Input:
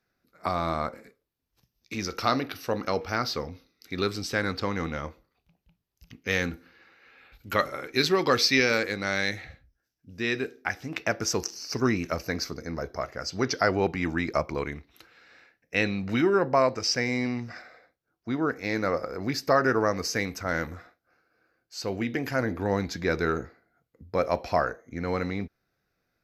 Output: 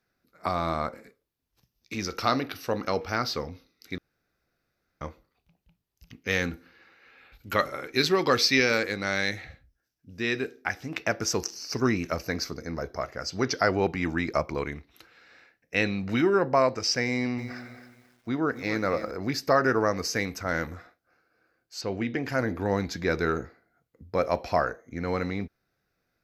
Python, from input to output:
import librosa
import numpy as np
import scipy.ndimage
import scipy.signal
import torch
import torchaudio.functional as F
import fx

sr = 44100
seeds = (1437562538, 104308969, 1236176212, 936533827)

y = fx.echo_crushed(x, sr, ms=270, feedback_pct=35, bits=9, wet_db=-12.0, at=(17.11, 19.11))
y = fx.air_absorb(y, sr, metres=80.0, at=(21.81, 22.29))
y = fx.edit(y, sr, fx.room_tone_fill(start_s=3.98, length_s=1.03), tone=tone)